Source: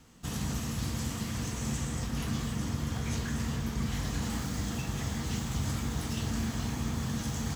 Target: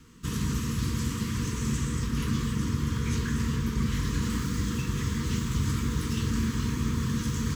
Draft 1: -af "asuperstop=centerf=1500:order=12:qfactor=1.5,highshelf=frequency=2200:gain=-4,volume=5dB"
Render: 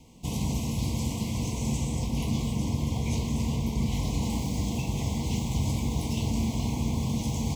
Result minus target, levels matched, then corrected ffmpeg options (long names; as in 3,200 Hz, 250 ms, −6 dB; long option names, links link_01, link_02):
2,000 Hz band −6.0 dB
-af "asuperstop=centerf=680:order=12:qfactor=1.5,highshelf=frequency=2200:gain=-4,volume=5dB"